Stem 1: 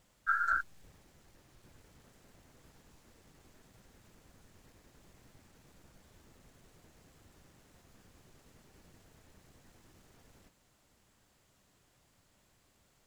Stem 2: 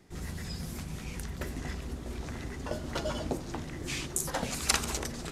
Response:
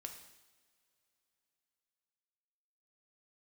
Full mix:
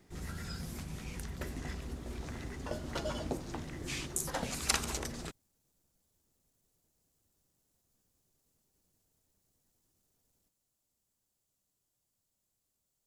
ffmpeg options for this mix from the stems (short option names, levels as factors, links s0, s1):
-filter_complex "[0:a]equalizer=f=1900:t=o:w=1.8:g=-7.5,crystalizer=i=2.5:c=0,volume=0.119[s0];[1:a]volume=0.668[s1];[s0][s1]amix=inputs=2:normalize=0"